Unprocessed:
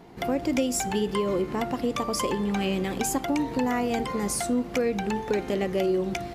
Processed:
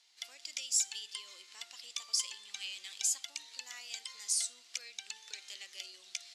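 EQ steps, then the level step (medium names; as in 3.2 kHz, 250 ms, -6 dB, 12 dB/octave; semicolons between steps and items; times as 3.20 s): Butterworth band-pass 5.7 kHz, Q 1.1; +1.5 dB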